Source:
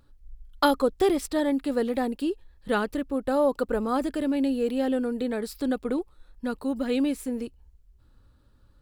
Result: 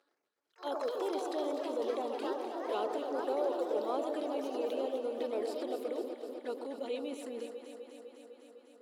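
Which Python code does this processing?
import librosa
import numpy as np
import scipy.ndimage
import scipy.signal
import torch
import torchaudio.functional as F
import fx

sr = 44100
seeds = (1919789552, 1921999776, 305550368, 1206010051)

p1 = scipy.signal.sosfilt(scipy.signal.butter(2, 11000.0, 'lowpass', fs=sr, output='sos'), x)
p2 = 10.0 ** (-22.5 / 20.0) * np.tanh(p1 / 10.0 ** (-22.5 / 20.0))
p3 = p1 + (p2 * librosa.db_to_amplitude(-4.5))
p4 = fx.env_flanger(p3, sr, rest_ms=11.3, full_db=-21.5)
p5 = fx.level_steps(p4, sr, step_db=16)
p6 = fx.echo_pitch(p5, sr, ms=82, semitones=4, count=3, db_per_echo=-6.0)
p7 = scipy.signal.sosfilt(scipy.signal.butter(4, 380.0, 'highpass', fs=sr, output='sos'), p6)
p8 = fx.high_shelf(p7, sr, hz=6500.0, db=-7.0)
p9 = p8 + fx.echo_alternate(p8, sr, ms=126, hz=1300.0, feedback_pct=86, wet_db=-7, dry=0)
y = fx.attack_slew(p9, sr, db_per_s=320.0)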